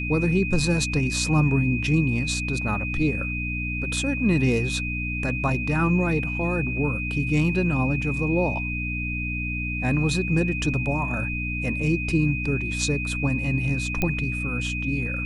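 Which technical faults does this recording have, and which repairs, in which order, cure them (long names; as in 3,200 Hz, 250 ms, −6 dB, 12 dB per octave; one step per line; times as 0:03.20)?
mains hum 60 Hz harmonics 5 −30 dBFS
whistle 2,500 Hz −29 dBFS
0:14.02: click −10 dBFS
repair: click removal
hum removal 60 Hz, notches 5
notch filter 2,500 Hz, Q 30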